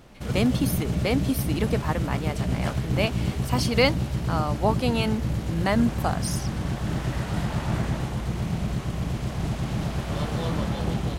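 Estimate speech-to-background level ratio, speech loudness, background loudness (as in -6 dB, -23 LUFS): 0.5 dB, -27.5 LUFS, -28.0 LUFS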